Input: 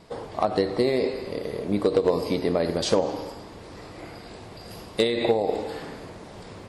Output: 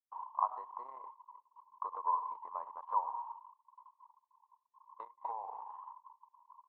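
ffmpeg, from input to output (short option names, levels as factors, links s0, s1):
-af "asuperpass=centerf=1000:order=4:qfactor=6,agate=range=0.0224:threshold=0.00316:ratio=3:detection=peak,anlmdn=0.001,volume=1.78"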